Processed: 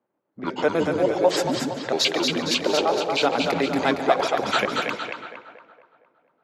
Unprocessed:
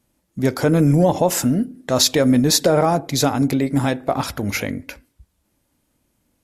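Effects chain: trilling pitch shifter -8 st, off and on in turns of 62 ms; HPF 170 Hz 12 dB/oct; three-band isolator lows -16 dB, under 360 Hz, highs -17 dB, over 5200 Hz; vocal rider within 5 dB 0.5 s; on a send: split-band echo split 490 Hz, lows 0.151 s, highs 0.231 s, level -4 dB; on the sum: low-pass opened by the level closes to 1000 Hz, open at -21 dBFS; warbling echo 0.147 s, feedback 40%, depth 70 cents, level -16 dB

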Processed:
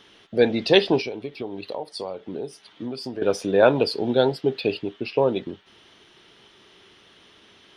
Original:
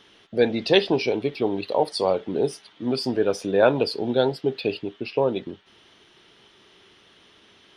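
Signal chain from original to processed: 1–3.22 compressor 5:1, threshold -31 dBFS, peak gain reduction 14.5 dB; gain +1.5 dB

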